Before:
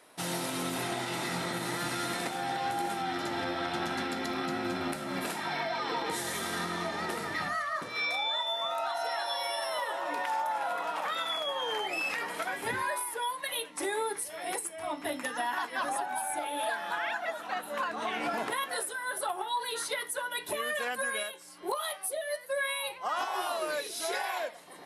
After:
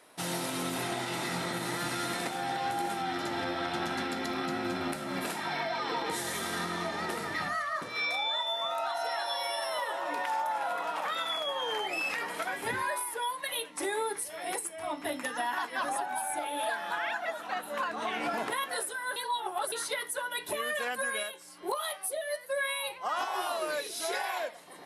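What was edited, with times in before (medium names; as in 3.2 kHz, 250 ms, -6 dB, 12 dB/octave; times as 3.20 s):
19.16–19.72 s: reverse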